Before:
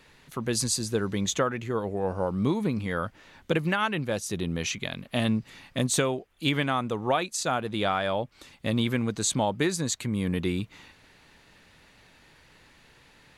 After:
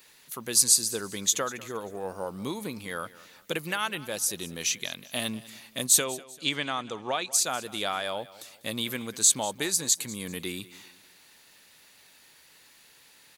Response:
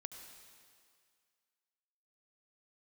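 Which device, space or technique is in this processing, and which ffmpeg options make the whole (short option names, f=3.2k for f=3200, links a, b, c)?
presence and air boost: -filter_complex "[0:a]asettb=1/sr,asplit=3[a][b][c];[a]atrim=end=6.044[d];[b]atrim=start=6.04:end=7.33,asetpts=PTS-STARTPTS,afade=t=in:d=0.004:c=qsin,afade=t=out:st=1.286:d=0.004:c=qsin,lowpass=f=7.2k:w=0.5412,lowpass=f=7.2k:w=1.3066[e];[c]atrim=start=7.326[f];[d][e]acrossfade=d=0.004:c1=hsin:c2=qsin[g];[g][f]acrossfade=d=0.004:c1=qsin:c2=hsin,aemphasis=mode=production:type=bsi,equalizer=f=4.6k:t=o:w=1.4:g=3,highshelf=f=9.3k:g=6,aecho=1:1:195|390|585:0.112|0.0426|0.0162,volume=-4.5dB"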